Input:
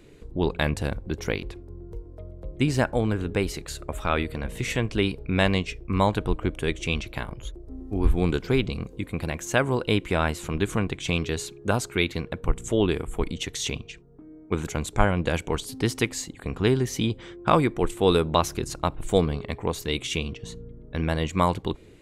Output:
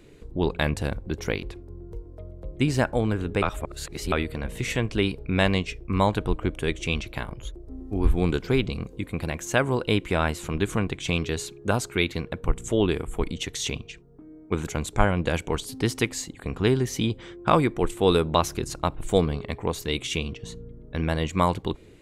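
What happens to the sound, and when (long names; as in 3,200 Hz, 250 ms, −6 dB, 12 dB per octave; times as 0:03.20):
0:03.42–0:04.12: reverse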